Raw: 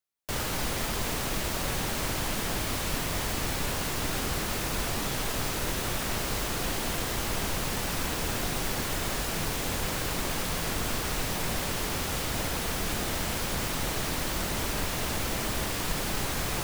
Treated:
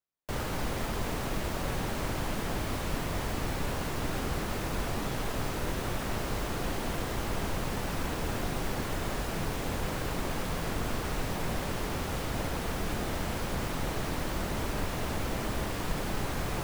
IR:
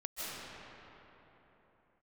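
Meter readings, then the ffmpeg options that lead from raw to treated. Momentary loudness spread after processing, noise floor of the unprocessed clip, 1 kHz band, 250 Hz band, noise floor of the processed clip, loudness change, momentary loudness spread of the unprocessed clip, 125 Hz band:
0 LU, −32 dBFS, −1.5 dB, 0.0 dB, −35 dBFS, −4.0 dB, 0 LU, 0.0 dB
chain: -af "highshelf=frequency=2200:gain=-10"

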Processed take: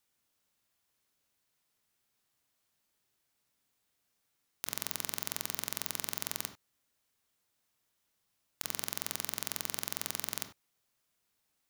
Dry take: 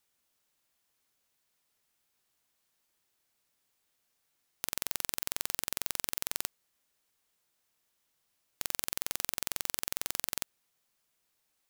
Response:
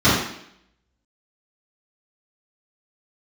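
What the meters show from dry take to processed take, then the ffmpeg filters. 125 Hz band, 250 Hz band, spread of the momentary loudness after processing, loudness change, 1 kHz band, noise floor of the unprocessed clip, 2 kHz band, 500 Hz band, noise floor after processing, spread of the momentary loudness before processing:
+3.0 dB, +1.0 dB, 4 LU, −2.0 dB, −1.5 dB, −78 dBFS, −1.5 dB, −0.5 dB, −80 dBFS, 4 LU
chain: -filter_complex "[0:a]asplit=2[link_01][link_02];[1:a]atrim=start_sample=2205,atrim=end_sample=3528,adelay=22[link_03];[link_02][link_03]afir=irnorm=-1:irlink=0,volume=-29.5dB[link_04];[link_01][link_04]amix=inputs=2:normalize=0,volume=-2dB"

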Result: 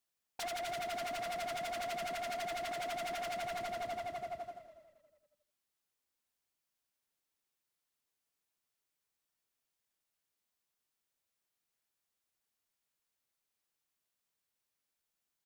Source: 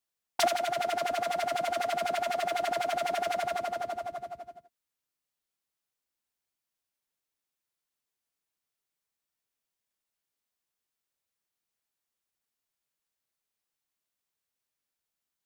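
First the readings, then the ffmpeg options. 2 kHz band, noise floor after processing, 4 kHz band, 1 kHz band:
−7.0 dB, below −85 dBFS, −7.0 dB, −9.0 dB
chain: -filter_complex "[0:a]alimiter=level_in=0.5dB:limit=-24dB:level=0:latency=1:release=193,volume=-0.5dB,asoftclip=type=hard:threshold=-37.5dB,asplit=2[link_01][link_02];[link_02]asplit=3[link_03][link_04][link_05];[link_03]adelay=278,afreqshift=-34,volume=-15dB[link_06];[link_04]adelay=556,afreqshift=-68,volume=-23.6dB[link_07];[link_05]adelay=834,afreqshift=-102,volume=-32.3dB[link_08];[link_06][link_07][link_08]amix=inputs=3:normalize=0[link_09];[link_01][link_09]amix=inputs=2:normalize=0"

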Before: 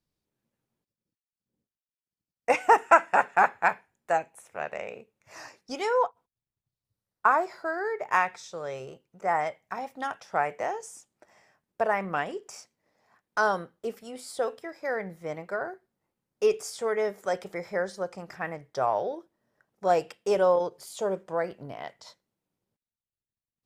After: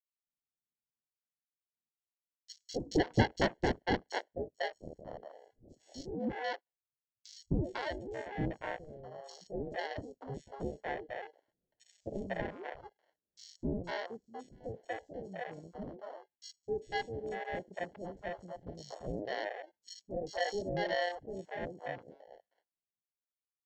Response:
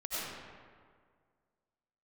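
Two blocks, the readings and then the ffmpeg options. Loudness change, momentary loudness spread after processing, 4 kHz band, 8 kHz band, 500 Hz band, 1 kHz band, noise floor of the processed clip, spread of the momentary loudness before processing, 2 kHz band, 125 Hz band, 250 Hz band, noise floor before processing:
−10.5 dB, 17 LU, 0.0 dB, −11.0 dB, −10.0 dB, −14.5 dB, below −85 dBFS, 17 LU, −10.5 dB, +5.5 dB, +1.0 dB, below −85 dBFS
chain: -filter_complex "[0:a]aresample=16000,acrusher=samples=13:mix=1:aa=0.000001,aresample=44100,afwtdn=0.0158,equalizer=frequency=2700:width=5.3:gain=-5.5,acrossover=split=510|4700[link_01][link_02][link_03];[link_01]adelay=260[link_04];[link_02]adelay=500[link_05];[link_04][link_05][link_03]amix=inputs=3:normalize=0,volume=-8dB"

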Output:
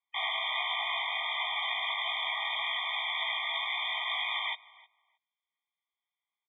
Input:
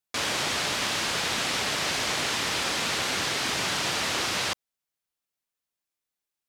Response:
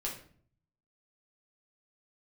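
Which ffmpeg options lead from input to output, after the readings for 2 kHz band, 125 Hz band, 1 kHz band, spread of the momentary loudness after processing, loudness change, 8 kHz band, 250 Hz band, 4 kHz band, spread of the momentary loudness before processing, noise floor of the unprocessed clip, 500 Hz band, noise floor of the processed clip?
−3.5 dB, below −40 dB, −3.5 dB, 1 LU, −5.0 dB, below −40 dB, below −40 dB, −4.0 dB, 1 LU, below −85 dBFS, −12.5 dB, below −85 dBFS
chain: -filter_complex "[0:a]highpass=41,lowpass=frequency=3100:width_type=q:width=0.5098,lowpass=frequency=3100:width_type=q:width=0.6013,lowpass=frequency=3100:width_type=q:width=0.9,lowpass=frequency=3100:width_type=q:width=2.563,afreqshift=-3700,acontrast=48,alimiter=limit=-21dB:level=0:latency=1:release=35,acontrast=48,asubboost=boost=11.5:cutoff=180,asplit=2[link_01][link_02];[link_02]adelay=18,volume=-3dB[link_03];[link_01][link_03]amix=inputs=2:normalize=0,asplit=2[link_04][link_05];[link_05]adelay=313,lowpass=frequency=2300:poles=1,volume=-20.5dB,asplit=2[link_06][link_07];[link_07]adelay=313,lowpass=frequency=2300:poles=1,volume=0.17[link_08];[link_04][link_06][link_08]amix=inputs=3:normalize=0,afftfilt=real='re*eq(mod(floor(b*sr/1024/620),2),1)':imag='im*eq(mod(floor(b*sr/1024/620),2),1)':win_size=1024:overlap=0.75,volume=-7.5dB"

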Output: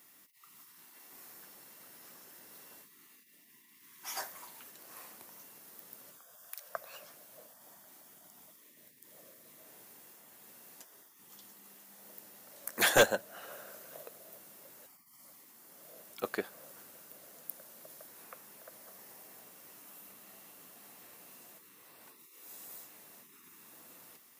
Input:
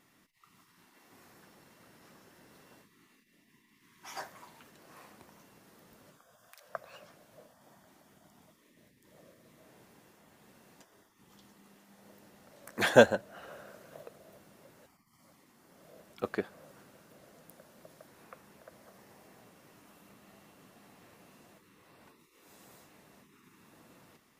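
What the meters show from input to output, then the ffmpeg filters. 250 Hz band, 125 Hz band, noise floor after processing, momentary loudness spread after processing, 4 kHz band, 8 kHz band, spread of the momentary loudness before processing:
−8.0 dB, −7.0 dB, −61 dBFS, 15 LU, +3.5 dB, +9.0 dB, 26 LU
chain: -filter_complex "[0:a]aemphasis=mode=production:type=bsi,acrossover=split=1700[link_01][link_02];[link_01]aeval=exprs='0.15*(abs(mod(val(0)/0.15+3,4)-2)-1)':channel_layout=same[link_03];[link_03][link_02]amix=inputs=2:normalize=0"

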